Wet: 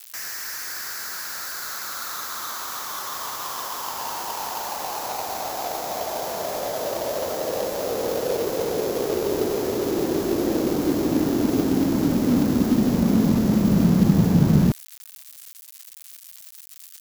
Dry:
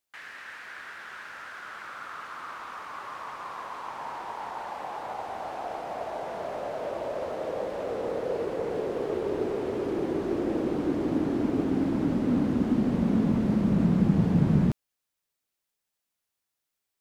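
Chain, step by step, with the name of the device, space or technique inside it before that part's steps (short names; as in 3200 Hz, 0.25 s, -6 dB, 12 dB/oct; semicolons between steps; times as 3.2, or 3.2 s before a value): budget class-D amplifier (switching dead time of 0.17 ms; switching spikes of -25 dBFS); gain +5.5 dB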